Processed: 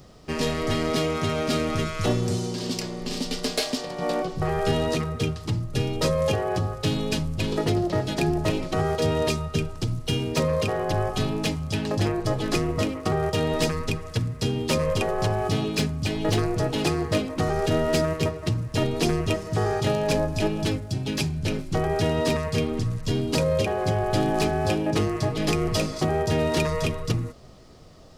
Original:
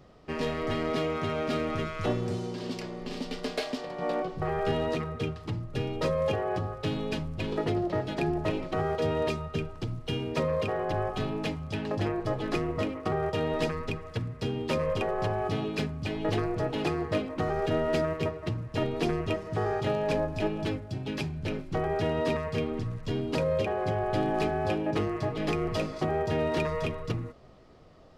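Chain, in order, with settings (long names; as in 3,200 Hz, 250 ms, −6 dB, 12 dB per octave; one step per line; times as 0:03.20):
bass and treble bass +4 dB, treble +14 dB
wave folding −16.5 dBFS
level +3.5 dB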